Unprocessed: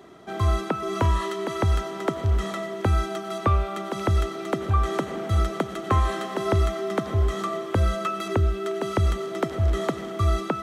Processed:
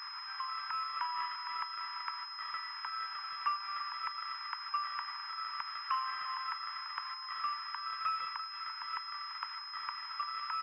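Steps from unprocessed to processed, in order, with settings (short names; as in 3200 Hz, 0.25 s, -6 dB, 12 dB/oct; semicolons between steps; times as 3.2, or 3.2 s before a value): zero-crossing step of -26 dBFS; steep high-pass 940 Hz 96 dB/oct; air absorption 350 m; on a send: echo 0.339 s -11 dB; on the sum: pulse-width modulation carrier 5100 Hz; gain -6.5 dB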